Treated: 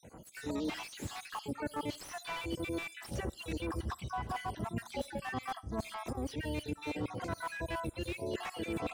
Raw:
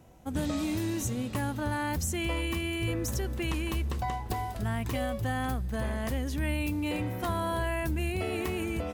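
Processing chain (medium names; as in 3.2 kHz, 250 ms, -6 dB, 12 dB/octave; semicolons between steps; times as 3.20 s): random holes in the spectrogram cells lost 67%; high-pass 130 Hz 6 dB/octave; reverse; compression 12:1, threshold -42 dBFS, peak gain reduction 13.5 dB; reverse; brick-wall FIR low-pass 11 kHz; harmony voices +7 st -7 dB; on a send at -22 dB: reverberation RT60 0.30 s, pre-delay 20 ms; on the sum: slew-rate limiter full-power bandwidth 10 Hz; trim +8 dB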